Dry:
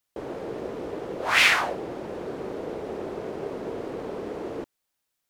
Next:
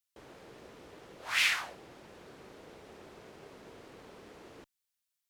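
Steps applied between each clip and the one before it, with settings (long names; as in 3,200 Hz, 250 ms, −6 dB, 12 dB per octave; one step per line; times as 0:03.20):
guitar amp tone stack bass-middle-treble 5-5-5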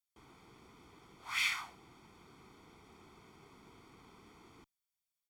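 comb filter 0.9 ms, depth 79%
level −8 dB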